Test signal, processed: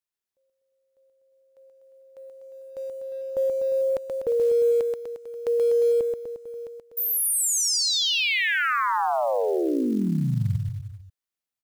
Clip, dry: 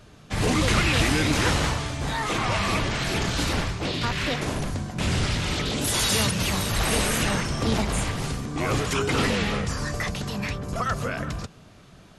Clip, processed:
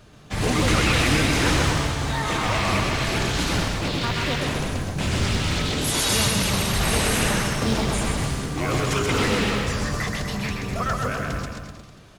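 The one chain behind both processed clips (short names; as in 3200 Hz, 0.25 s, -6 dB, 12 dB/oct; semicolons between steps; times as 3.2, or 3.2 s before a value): bouncing-ball echo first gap 0.13 s, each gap 0.9×, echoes 5; short-mantissa float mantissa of 4-bit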